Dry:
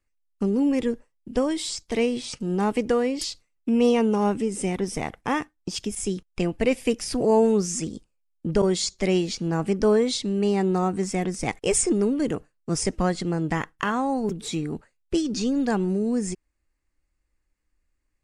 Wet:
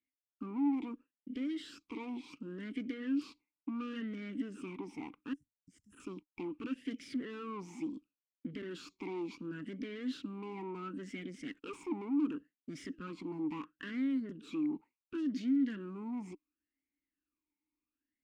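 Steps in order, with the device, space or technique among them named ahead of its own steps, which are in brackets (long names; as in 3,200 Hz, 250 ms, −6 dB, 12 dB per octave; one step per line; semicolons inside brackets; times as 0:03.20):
0:05.33–0:06.00: inverse Chebyshev band-stop filter 360–3,000 Hz, stop band 60 dB
talk box (tube saturation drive 31 dB, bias 0.7; formant filter swept between two vowels i-u 0.71 Hz)
level +5.5 dB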